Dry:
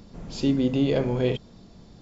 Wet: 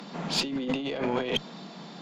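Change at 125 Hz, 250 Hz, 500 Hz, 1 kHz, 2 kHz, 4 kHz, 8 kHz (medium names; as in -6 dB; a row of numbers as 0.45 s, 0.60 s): -11.5 dB, -7.0 dB, -5.5 dB, +5.0 dB, +4.0 dB, +7.0 dB, no reading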